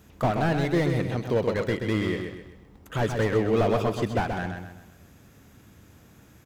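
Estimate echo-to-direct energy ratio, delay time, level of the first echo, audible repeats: -5.0 dB, 129 ms, -6.0 dB, 4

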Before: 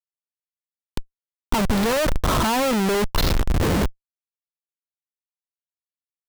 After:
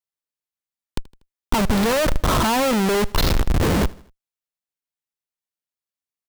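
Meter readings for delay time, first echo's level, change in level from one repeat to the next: 80 ms, -23.0 dB, -6.0 dB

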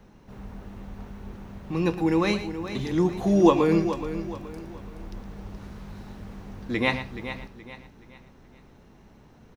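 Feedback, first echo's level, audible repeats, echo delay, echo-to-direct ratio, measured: no regular repeats, -12.0 dB, 6, 115 ms, -8.0 dB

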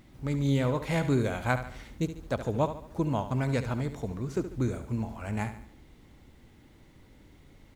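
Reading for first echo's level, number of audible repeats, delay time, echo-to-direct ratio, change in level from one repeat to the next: -11.0 dB, 4, 72 ms, -10.0 dB, -7.0 dB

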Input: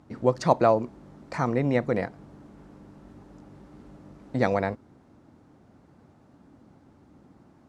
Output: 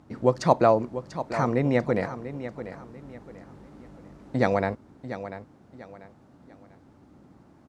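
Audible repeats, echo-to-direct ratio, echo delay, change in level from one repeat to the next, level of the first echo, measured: 3, -11.5 dB, 692 ms, -10.0 dB, -12.0 dB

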